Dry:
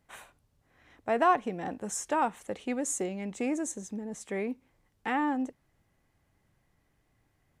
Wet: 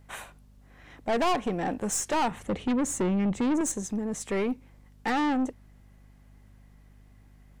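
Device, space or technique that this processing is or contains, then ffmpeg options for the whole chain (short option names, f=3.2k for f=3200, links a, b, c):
valve amplifier with mains hum: -filter_complex "[0:a]asettb=1/sr,asplit=3[a][b][c];[a]atrim=end=2.314[d];[b]atrim=start=2.31:end=3.61,asetpts=PTS-STARTPTS,afade=t=in:d=0.004:c=qsin,afade=t=out:st=1.296:d=0.004:c=qsin,bass=f=250:g=12,treble=f=4k:g=-8[e];[c]atrim=start=3.606[f];[d][e]acrossfade=d=0.004:c1=hsin:c2=qsin[g];[g][f]acrossfade=d=0.004:c1=qsin:c2=hsin,aeval=exprs='(tanh(35.5*val(0)+0.25)-tanh(0.25))/35.5':c=same,aeval=exprs='val(0)+0.000794*(sin(2*PI*50*n/s)+sin(2*PI*2*50*n/s)/2+sin(2*PI*3*50*n/s)/3+sin(2*PI*4*50*n/s)/4+sin(2*PI*5*50*n/s)/5)':c=same,volume=8.5dB"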